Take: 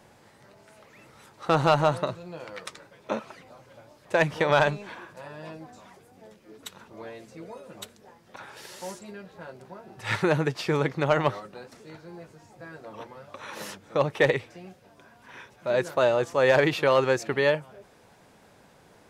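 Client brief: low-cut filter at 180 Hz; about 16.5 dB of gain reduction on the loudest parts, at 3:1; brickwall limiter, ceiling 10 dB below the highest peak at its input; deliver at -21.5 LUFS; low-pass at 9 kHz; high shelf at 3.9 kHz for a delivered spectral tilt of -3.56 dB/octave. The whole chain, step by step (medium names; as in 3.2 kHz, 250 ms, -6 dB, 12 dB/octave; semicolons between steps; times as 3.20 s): high-pass 180 Hz; low-pass 9 kHz; treble shelf 3.9 kHz -7 dB; compression 3:1, threshold -40 dBFS; trim +23.5 dB; peak limiter -7 dBFS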